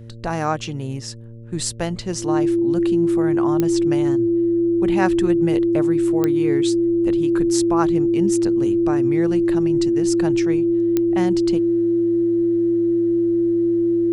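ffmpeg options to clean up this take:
ffmpeg -i in.wav -af "adeclick=threshold=4,bandreject=frequency=114.7:width_type=h:width=4,bandreject=frequency=229.4:width_type=h:width=4,bandreject=frequency=344.1:width_type=h:width=4,bandreject=frequency=458.8:width_type=h:width=4,bandreject=frequency=573.5:width_type=h:width=4,bandreject=frequency=340:width=30" out.wav

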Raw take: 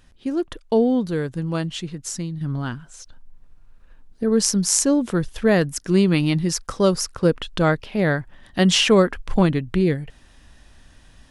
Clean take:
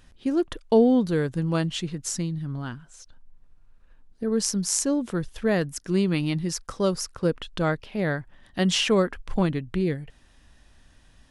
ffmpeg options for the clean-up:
ffmpeg -i in.wav -af "asetnsamples=nb_out_samples=441:pad=0,asendcmd='2.41 volume volume -6dB',volume=0dB" out.wav

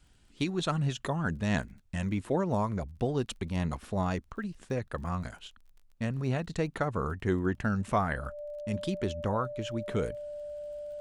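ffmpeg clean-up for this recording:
ffmpeg -i in.wav -af "adeclick=threshold=4,bandreject=frequency=590:width=30" out.wav

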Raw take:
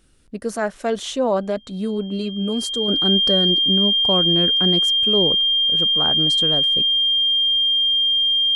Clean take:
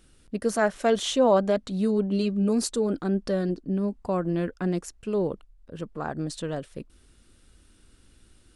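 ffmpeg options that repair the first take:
ffmpeg -i in.wav -af "bandreject=frequency=3200:width=30,asetnsamples=nb_out_samples=441:pad=0,asendcmd='2.88 volume volume -5dB',volume=0dB" out.wav

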